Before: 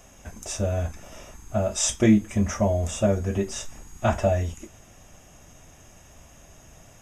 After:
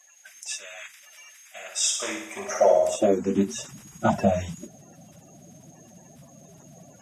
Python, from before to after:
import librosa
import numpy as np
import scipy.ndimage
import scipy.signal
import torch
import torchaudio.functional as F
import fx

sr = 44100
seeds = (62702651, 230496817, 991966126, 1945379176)

y = fx.spec_quant(x, sr, step_db=30)
y = fx.filter_sweep_highpass(y, sr, from_hz=2000.0, to_hz=160.0, start_s=1.57, end_s=3.59, q=2.2)
y = fx.room_flutter(y, sr, wall_m=10.1, rt60_s=0.74, at=(1.55, 2.95), fade=0.02)